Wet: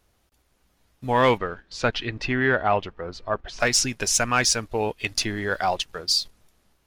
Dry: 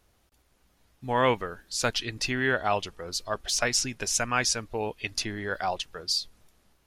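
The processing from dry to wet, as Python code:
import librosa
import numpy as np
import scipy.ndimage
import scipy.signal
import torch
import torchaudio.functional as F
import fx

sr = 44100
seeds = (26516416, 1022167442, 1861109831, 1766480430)

y = fx.leveller(x, sr, passes=1)
y = fx.lowpass(y, sr, hz=fx.line((1.37, 3300.0), (3.59, 1700.0)), slope=12, at=(1.37, 3.59), fade=0.02)
y = y * librosa.db_to_amplitude(2.0)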